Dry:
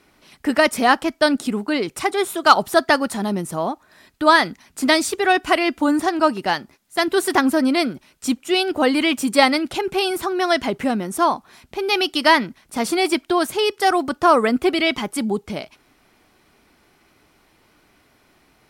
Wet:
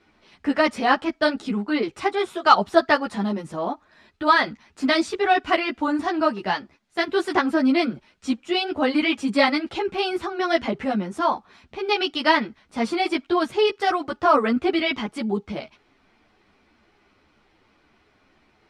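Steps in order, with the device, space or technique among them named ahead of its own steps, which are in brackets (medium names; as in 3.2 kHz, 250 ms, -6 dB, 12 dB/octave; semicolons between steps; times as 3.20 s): string-machine ensemble chorus (three-phase chorus; low-pass 4.3 kHz 12 dB/octave)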